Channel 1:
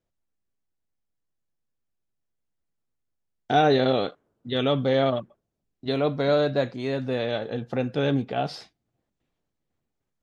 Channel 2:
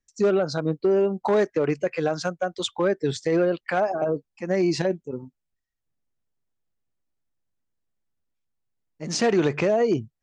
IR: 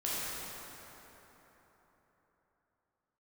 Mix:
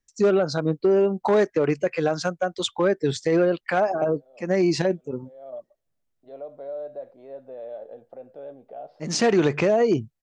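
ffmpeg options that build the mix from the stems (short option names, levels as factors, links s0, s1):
-filter_complex "[0:a]alimiter=limit=0.0944:level=0:latency=1:release=76,bandpass=f=600:t=q:w=4.2:csg=0,adelay=400,volume=0.794[s0];[1:a]volume=1.19,asplit=2[s1][s2];[s2]apad=whole_len=468542[s3];[s0][s3]sidechaincompress=threshold=0.00282:ratio=5:attack=16:release=209[s4];[s4][s1]amix=inputs=2:normalize=0"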